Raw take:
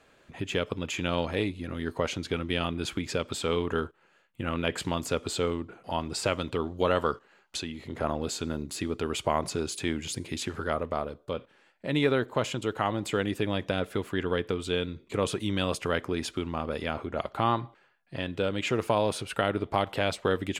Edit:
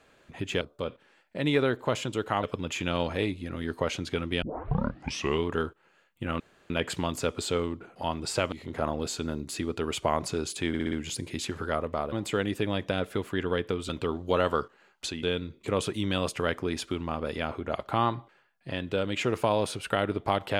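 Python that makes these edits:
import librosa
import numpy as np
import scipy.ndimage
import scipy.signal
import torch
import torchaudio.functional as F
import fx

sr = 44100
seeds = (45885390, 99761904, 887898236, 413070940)

y = fx.edit(x, sr, fx.tape_start(start_s=2.6, length_s=1.02),
    fx.insert_room_tone(at_s=4.58, length_s=0.3),
    fx.move(start_s=6.4, length_s=1.34, to_s=14.69),
    fx.stutter(start_s=9.9, slice_s=0.06, count=5),
    fx.move(start_s=11.1, length_s=1.82, to_s=0.61), tone=tone)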